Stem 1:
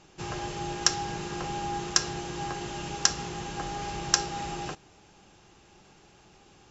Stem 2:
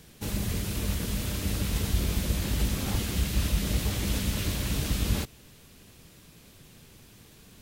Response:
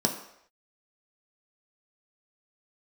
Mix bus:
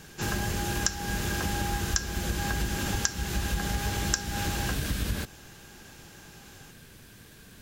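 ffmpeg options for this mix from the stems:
-filter_complex "[0:a]highshelf=f=5800:g=11.5,volume=1.19[s0];[1:a]volume=1.19[s1];[s0][s1]amix=inputs=2:normalize=0,equalizer=f=1600:t=o:w=0.21:g=11.5,acompressor=threshold=0.0501:ratio=4"

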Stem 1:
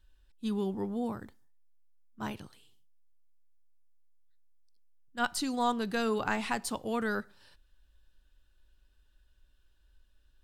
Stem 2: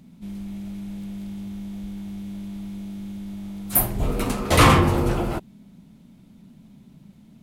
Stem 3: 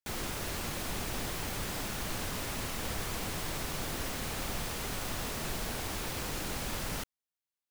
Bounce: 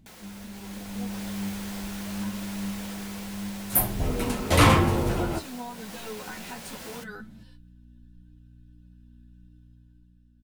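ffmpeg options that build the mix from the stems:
-filter_complex "[0:a]aecho=1:1:4:0.9,asplit=2[s0][s1];[s1]adelay=11.2,afreqshift=-1.2[s2];[s0][s2]amix=inputs=2:normalize=1,volume=0.531[s3];[1:a]volume=0.596[s4];[2:a]highpass=360,volume=0.794[s5];[s3][s5]amix=inputs=2:normalize=0,aeval=exprs='val(0)+0.00224*(sin(2*PI*60*n/s)+sin(2*PI*2*60*n/s)/2+sin(2*PI*3*60*n/s)/3+sin(2*PI*4*60*n/s)/4+sin(2*PI*5*60*n/s)/5)':c=same,acompressor=threshold=0.00631:ratio=2,volume=1[s6];[s4][s6]amix=inputs=2:normalize=0,bandreject=f=1200:w=14,dynaudnorm=f=120:g=13:m=2.51,flanger=delay=9:depth=3.5:regen=61:speed=0.82:shape=sinusoidal"

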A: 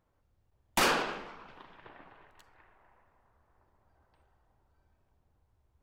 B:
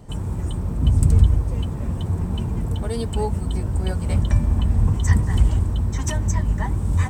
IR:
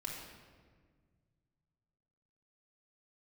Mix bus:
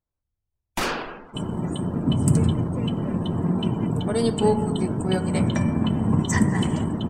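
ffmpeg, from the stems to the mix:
-filter_complex "[0:a]volume=0.841,asplit=2[s0][s1];[s1]volume=0.266[s2];[1:a]highpass=f=170:w=0.5412,highpass=f=170:w=1.3066,aeval=exprs='sgn(val(0))*max(abs(val(0))-0.00473,0)':c=same,adelay=1250,volume=1.33,asplit=2[s3][s4];[s4]volume=0.596[s5];[2:a]atrim=start_sample=2205[s6];[s2][s5]amix=inputs=2:normalize=0[s7];[s7][s6]afir=irnorm=-1:irlink=0[s8];[s0][s3][s8]amix=inputs=3:normalize=0,afftdn=nr=18:nf=-44,lowshelf=f=200:g=9"

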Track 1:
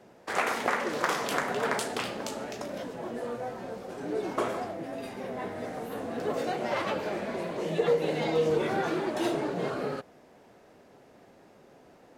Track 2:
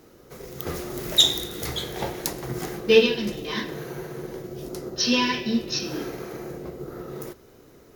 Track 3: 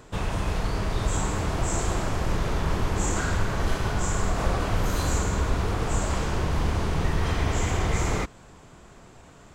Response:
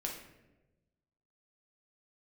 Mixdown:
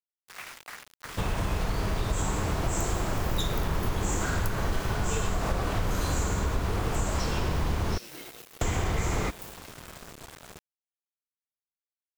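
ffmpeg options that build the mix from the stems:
-filter_complex "[0:a]highpass=780,equalizer=f=2900:w=0.59:g=10.5,volume=0.1,asplit=2[s0][s1];[s1]volume=0.2[s2];[1:a]aemphasis=mode=production:type=50kf,adelay=2200,volume=0.141[s3];[2:a]adelay=1050,volume=1.33,asplit=3[s4][s5][s6];[s4]atrim=end=7.98,asetpts=PTS-STARTPTS,afade=t=out:st=7.976:d=0.004:c=hsin[s7];[s5]atrim=start=7.98:end=8.61,asetpts=PTS-STARTPTS,volume=0[s8];[s6]atrim=start=8.61,asetpts=PTS-STARTPTS,afade=t=in:d=0.004:c=hsin[s9];[s7][s8][s9]concat=n=3:v=0:a=1[s10];[s2]aecho=0:1:94:1[s11];[s0][s3][s10][s11]amix=inputs=4:normalize=0,acrusher=bits=6:mix=0:aa=0.000001,acompressor=threshold=0.0501:ratio=2.5"

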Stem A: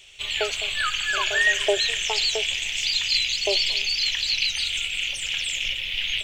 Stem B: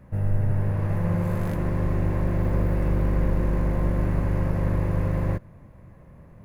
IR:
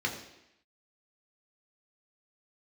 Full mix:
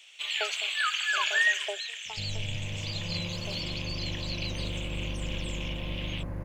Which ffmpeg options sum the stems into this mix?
-filter_complex "[0:a]highpass=1100,tiltshelf=f=1400:g=4,volume=0.841,afade=t=out:st=1.37:d=0.46:silence=0.334965[s0];[1:a]bandreject=f=400:w=12,adelay=2050,volume=0.237[s1];[s0][s1]amix=inputs=2:normalize=0,equalizer=f=430:t=o:w=2:g=2.5"

